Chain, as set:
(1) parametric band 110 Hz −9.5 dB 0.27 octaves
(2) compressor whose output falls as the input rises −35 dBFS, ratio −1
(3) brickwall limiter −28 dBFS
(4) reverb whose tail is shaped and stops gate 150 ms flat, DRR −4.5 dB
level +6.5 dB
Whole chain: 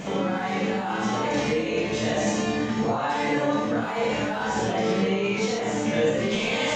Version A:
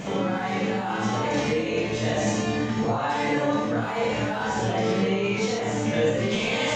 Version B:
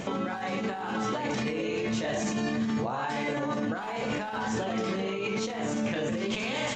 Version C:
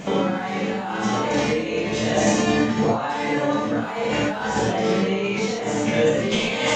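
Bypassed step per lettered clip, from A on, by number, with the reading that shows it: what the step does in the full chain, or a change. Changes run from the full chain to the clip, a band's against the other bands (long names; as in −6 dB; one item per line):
1, 125 Hz band +3.0 dB
4, 500 Hz band −1.5 dB
3, average gain reduction 2.0 dB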